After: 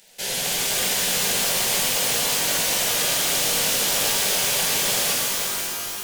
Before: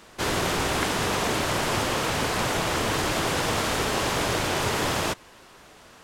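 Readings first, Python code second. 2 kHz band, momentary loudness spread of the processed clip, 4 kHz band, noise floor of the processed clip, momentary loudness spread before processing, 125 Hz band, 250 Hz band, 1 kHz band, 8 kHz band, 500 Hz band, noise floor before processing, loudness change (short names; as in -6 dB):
+1.0 dB, 4 LU, +7.0 dB, -31 dBFS, 1 LU, -8.0 dB, -6.5 dB, -4.0 dB, +11.5 dB, -2.5 dB, -51 dBFS, +5.5 dB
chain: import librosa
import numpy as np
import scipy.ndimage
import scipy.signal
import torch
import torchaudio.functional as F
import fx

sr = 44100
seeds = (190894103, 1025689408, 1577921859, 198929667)

p1 = fx.high_shelf(x, sr, hz=9300.0, db=8.5)
p2 = fx.quant_companded(p1, sr, bits=2)
p3 = p1 + (p2 * 10.0 ** (-10.0 / 20.0))
p4 = fx.tilt_shelf(p3, sr, db=-6.0, hz=920.0)
p5 = fx.fixed_phaser(p4, sr, hz=310.0, stages=6)
p6 = p5 + 10.0 ** (-11.0 / 20.0) * np.pad(p5, (int(485 * sr / 1000.0), 0))[:len(p5)]
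p7 = fx.rev_shimmer(p6, sr, seeds[0], rt60_s=3.1, semitones=12, shimmer_db=-2, drr_db=-3.5)
y = p7 * 10.0 ** (-6.5 / 20.0)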